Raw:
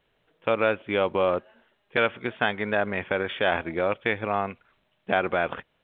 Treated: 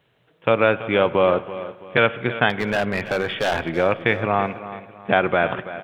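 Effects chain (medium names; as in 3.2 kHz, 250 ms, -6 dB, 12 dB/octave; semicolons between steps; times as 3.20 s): high-pass 73 Hz; peaking EQ 130 Hz +9 dB 0.59 oct; 2.50–3.76 s: overload inside the chain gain 22 dB; feedback delay 331 ms, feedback 35%, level -14 dB; spring tank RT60 1.9 s, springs 35/48 ms, chirp 60 ms, DRR 16.5 dB; trim +5.5 dB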